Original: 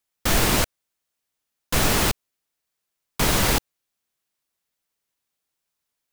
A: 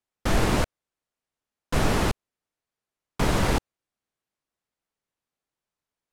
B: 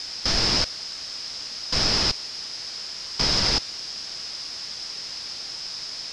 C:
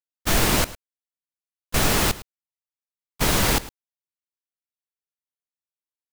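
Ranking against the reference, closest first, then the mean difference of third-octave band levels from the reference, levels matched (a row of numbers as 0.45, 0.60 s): C, A, B; 2.0, 5.0, 9.0 dB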